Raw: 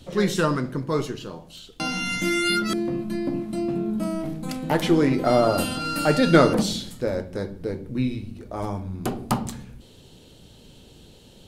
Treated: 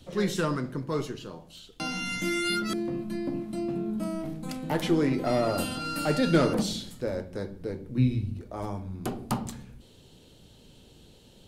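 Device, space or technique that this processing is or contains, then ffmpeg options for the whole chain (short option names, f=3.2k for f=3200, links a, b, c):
one-band saturation: -filter_complex "[0:a]asettb=1/sr,asplit=3[a][b][c];[a]atrim=end=7.974[d];[b]atrim=start=7.97:end=8.41,asetpts=PTS-STARTPTS,afade=t=in:d=0.004:c=qsin,afade=t=out:st=0.436:d=0.004:c=qsin,equalizer=f=100:w=0.76:g=11.5[e];[c]atrim=start=8.406[f];[d][e]acrossfade=d=0.004:c1=hsin:c2=qsin[g];[g][f]acrossfade=d=0.004:c1=qsin:c2=hsin,acrossover=split=410|3800[h][i][j];[i]asoftclip=type=tanh:threshold=-18dB[k];[h][k][j]amix=inputs=3:normalize=0,volume=-5dB"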